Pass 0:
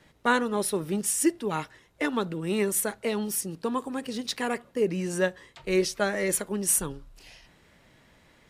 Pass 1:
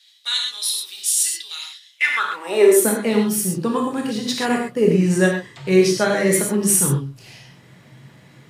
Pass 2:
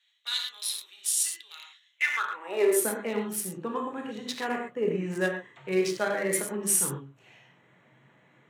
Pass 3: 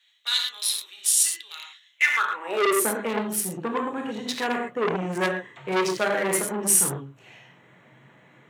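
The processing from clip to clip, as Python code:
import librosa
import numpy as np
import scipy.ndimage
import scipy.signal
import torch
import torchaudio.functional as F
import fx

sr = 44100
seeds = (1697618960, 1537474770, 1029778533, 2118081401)

y1 = fx.filter_sweep_highpass(x, sr, from_hz=3800.0, to_hz=130.0, start_s=1.84, end_s=3.12, q=4.6)
y1 = fx.rev_gated(y1, sr, seeds[0], gate_ms=150, shape='flat', drr_db=-0.5)
y1 = y1 * 10.0 ** (4.5 / 20.0)
y2 = fx.wiener(y1, sr, points=9)
y2 = fx.highpass(y2, sr, hz=520.0, slope=6)
y2 = y2 * 10.0 ** (-6.5 / 20.0)
y3 = fx.transformer_sat(y2, sr, knee_hz=2200.0)
y3 = y3 * 10.0 ** (6.5 / 20.0)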